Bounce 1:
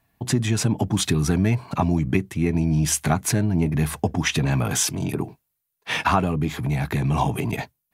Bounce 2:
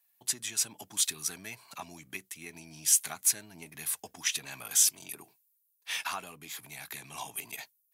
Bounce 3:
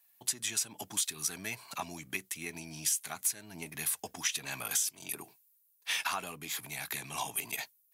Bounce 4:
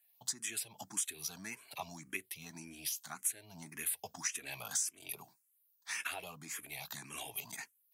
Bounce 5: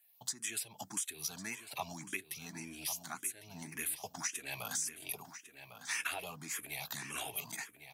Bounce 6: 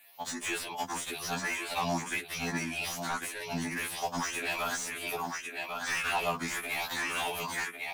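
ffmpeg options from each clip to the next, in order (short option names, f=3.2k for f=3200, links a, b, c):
-af "aderivative"
-af "acompressor=threshold=-33dB:ratio=8,volume=4.5dB"
-filter_complex "[0:a]asplit=2[a][b];[b]afreqshift=1.8[c];[a][c]amix=inputs=2:normalize=1,volume=-2.5dB"
-filter_complex "[0:a]alimiter=level_in=3.5dB:limit=-24dB:level=0:latency=1:release=295,volume=-3.5dB,asplit=2[a][b];[b]adelay=1101,lowpass=f=4.4k:p=1,volume=-10dB,asplit=2[c][d];[d]adelay=1101,lowpass=f=4.4k:p=1,volume=0.3,asplit=2[e][f];[f]adelay=1101,lowpass=f=4.4k:p=1,volume=0.3[g];[a][c][e][g]amix=inputs=4:normalize=0,volume=3dB"
-filter_complex "[0:a]asplit=2[a][b];[b]highpass=f=720:p=1,volume=27dB,asoftclip=type=tanh:threshold=-23.5dB[c];[a][c]amix=inputs=2:normalize=0,lowpass=f=1.8k:p=1,volume=-6dB,afftfilt=real='re*2*eq(mod(b,4),0)':imag='im*2*eq(mod(b,4),0)':win_size=2048:overlap=0.75,volume=5.5dB"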